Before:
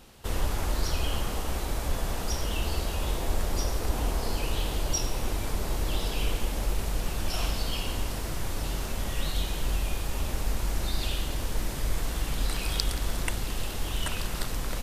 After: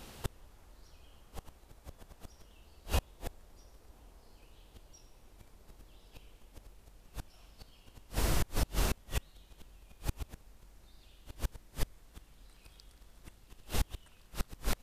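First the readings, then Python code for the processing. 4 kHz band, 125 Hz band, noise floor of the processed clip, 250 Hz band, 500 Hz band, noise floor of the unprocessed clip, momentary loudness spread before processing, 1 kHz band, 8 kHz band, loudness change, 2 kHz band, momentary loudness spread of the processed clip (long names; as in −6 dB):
−13.5 dB, −10.5 dB, −61 dBFS, −10.5 dB, −11.5 dB, −33 dBFS, 3 LU, −11.5 dB, −11.5 dB, −8.0 dB, −11.0 dB, 24 LU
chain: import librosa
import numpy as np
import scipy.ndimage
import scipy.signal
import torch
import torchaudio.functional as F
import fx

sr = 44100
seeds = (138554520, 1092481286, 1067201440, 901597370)

y = fx.gate_flip(x, sr, shuts_db=-20.0, range_db=-32)
y = F.gain(torch.from_numpy(y), 2.5).numpy()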